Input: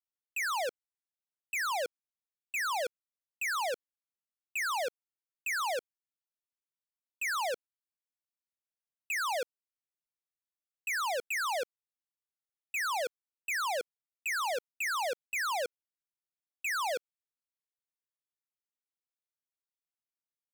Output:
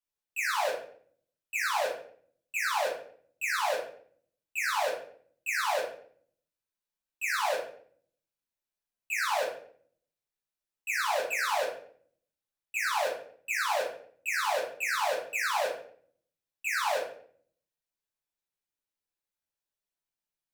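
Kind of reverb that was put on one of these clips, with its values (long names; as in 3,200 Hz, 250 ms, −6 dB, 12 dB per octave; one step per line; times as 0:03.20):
rectangular room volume 74 cubic metres, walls mixed, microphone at 1.4 metres
level −3.5 dB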